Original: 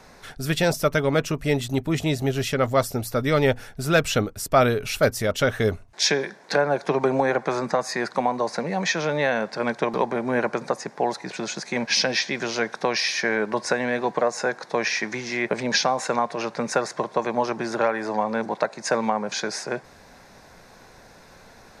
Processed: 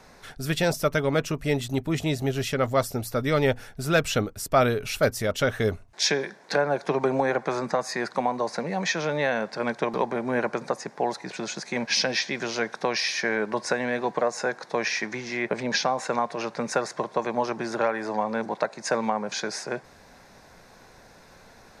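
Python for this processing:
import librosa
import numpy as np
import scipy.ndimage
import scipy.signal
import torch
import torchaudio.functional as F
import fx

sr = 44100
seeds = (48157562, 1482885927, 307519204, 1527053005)

y = fx.high_shelf(x, sr, hz=5000.0, db=-4.5, at=(15.06, 16.13))
y = y * librosa.db_to_amplitude(-2.5)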